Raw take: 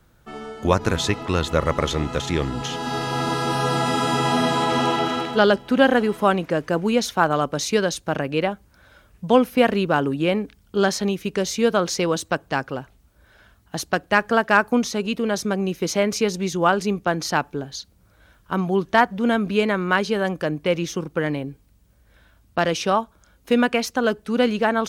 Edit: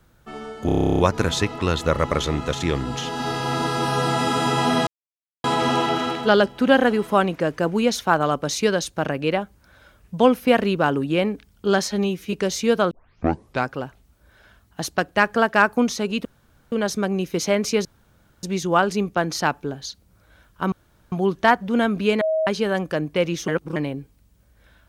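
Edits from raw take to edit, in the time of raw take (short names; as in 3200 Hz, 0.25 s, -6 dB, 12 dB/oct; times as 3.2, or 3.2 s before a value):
0.66 stutter 0.03 s, 12 plays
4.54 insert silence 0.57 s
10.98–11.28 stretch 1.5×
11.86 tape start 0.77 s
15.2 insert room tone 0.47 s
16.33 insert room tone 0.58 s
18.62 insert room tone 0.40 s
19.71–19.97 bleep 635 Hz -18 dBFS
20.98–21.26 reverse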